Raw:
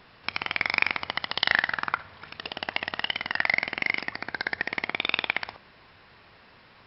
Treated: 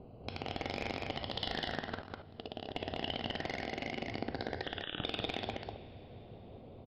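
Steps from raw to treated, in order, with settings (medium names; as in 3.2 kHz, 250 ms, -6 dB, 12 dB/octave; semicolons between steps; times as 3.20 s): local Wiener filter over 25 samples; two-slope reverb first 0.4 s, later 4 s, from -22 dB, DRR 12 dB; hard clipper -17 dBFS, distortion -9 dB; 1.79–2.82 s: level held to a coarse grid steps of 15 dB; 4.63–5.04 s: frequency inversion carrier 3.7 kHz; distance through air 300 m; peak limiter -26 dBFS, peak gain reduction 8 dB; high-order bell 1.5 kHz -14.5 dB; delay 199 ms -3 dB; trim +7.5 dB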